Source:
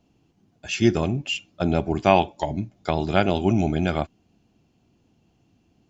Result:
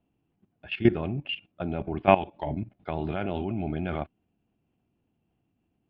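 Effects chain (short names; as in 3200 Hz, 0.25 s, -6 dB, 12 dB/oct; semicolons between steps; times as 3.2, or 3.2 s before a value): inverse Chebyshev low-pass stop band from 5800 Hz, stop band 40 dB; level quantiser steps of 15 dB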